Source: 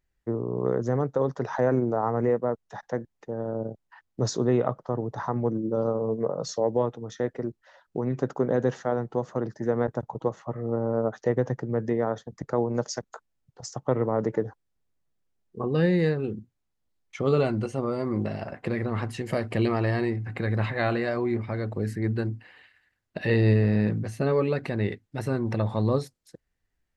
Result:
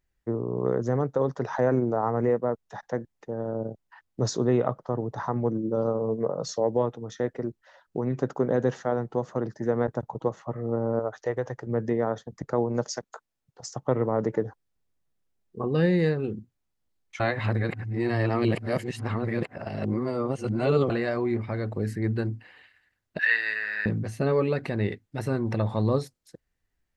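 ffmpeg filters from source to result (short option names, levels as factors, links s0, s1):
-filter_complex "[0:a]asettb=1/sr,asplit=3[s0][s1][s2];[s0]atrim=end=10.994[s3];[s1]atrim=start=10.99:end=11.67,asetpts=PTS-STARTPTS,afade=t=in:d=0.004:c=qsin,afade=t=out:st=0.676:d=0.004:c=qsin,equalizer=f=200:w=1:g=-14[s4];[s2]atrim=start=11.666[s5];[s3][s4]acrossfade=d=0.004:c1=hsin:c2=qsin[s6];[s6][s5]acrossfade=d=0.004:c1=qsin:c2=hsin,asettb=1/sr,asplit=3[s7][s8][s9];[s7]atrim=end=12.954[s10];[s8]atrim=start=12.95:end=13.68,asetpts=PTS-STARTPTS,afade=t=in:d=0.004:c=qsin,afade=t=out:st=0.726:d=0.004:c=qsin,lowshelf=f=160:g=-9[s11];[s9]atrim=start=13.676[s12];[s10][s11]acrossfade=d=0.004:c1=hsin:c2=qsin[s13];[s13][s12]acrossfade=d=0.004:c1=qsin:c2=hsin,asettb=1/sr,asplit=3[s14][s15][s16];[s14]atrim=end=23.194[s17];[s15]atrim=start=23.19:end=23.86,asetpts=PTS-STARTPTS,afade=t=in:d=0.004:c=qsin,afade=t=out:st=0.666:d=0.004:c=qsin,highpass=f=1600:t=q:w=6.6[s18];[s16]atrim=start=23.856[s19];[s17][s18]acrossfade=d=0.004:c1=hsin:c2=qsin[s20];[s20][s19]acrossfade=d=0.004:c1=qsin:c2=hsin,asplit=3[s21][s22][s23];[s21]atrim=end=17.202[s24];[s22]atrim=start=17.198:end=20.902,asetpts=PTS-STARTPTS,areverse[s25];[s23]atrim=start=20.898[s26];[s24][s25]acrossfade=d=0.004:c1=hsin:c2=hsin[s27];[s27][s26]acrossfade=d=0.004:c1=hsin:c2=hsin"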